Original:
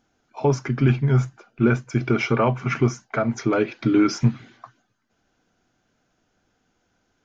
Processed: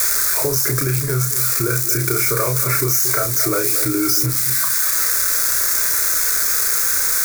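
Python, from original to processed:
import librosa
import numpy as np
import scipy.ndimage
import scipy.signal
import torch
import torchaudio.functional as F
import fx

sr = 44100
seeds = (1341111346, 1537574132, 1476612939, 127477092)

p1 = x + 0.5 * 10.0 ** (-18.0 / 20.0) * np.diff(np.sign(x), prepend=np.sign(x[:1]))
p2 = fx.high_shelf(p1, sr, hz=2500.0, db=9.0)
p3 = fx.over_compress(p2, sr, threshold_db=-24.0, ratio=-1.0)
p4 = p2 + (p3 * librosa.db_to_amplitude(3.0))
p5 = 10.0 ** (-2.5 / 20.0) * np.tanh(p4 / 10.0 ** (-2.5 / 20.0))
p6 = fx.fixed_phaser(p5, sr, hz=810.0, stages=6)
p7 = fx.doubler(p6, sr, ms=32.0, db=-4.0)
p8 = p7 + fx.echo_single(p7, sr, ms=227, db=-14.0, dry=0)
p9 = fx.band_squash(p8, sr, depth_pct=70)
y = p9 * librosa.db_to_amplitude(-2.5)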